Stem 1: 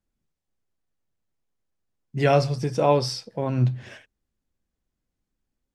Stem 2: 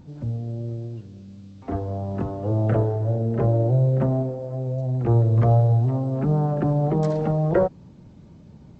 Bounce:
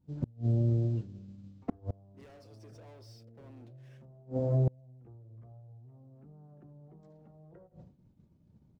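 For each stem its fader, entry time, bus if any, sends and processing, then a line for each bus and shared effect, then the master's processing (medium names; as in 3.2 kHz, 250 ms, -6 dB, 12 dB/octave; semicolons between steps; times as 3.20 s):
-9.0 dB, 0.00 s, no send, no echo send, steep high-pass 240 Hz 36 dB/octave; compression 2.5:1, threshold -25 dBFS, peak gain reduction 7.5 dB; waveshaping leveller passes 5
-3.0 dB, 0.00 s, no send, echo send -23.5 dB, de-hum 52.13 Hz, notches 17; compression 3:1, threshold -23 dBFS, peak gain reduction 7.5 dB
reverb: none
echo: feedback delay 81 ms, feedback 43%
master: expander -36 dBFS; bass shelf 430 Hz +7.5 dB; inverted gate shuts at -19 dBFS, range -32 dB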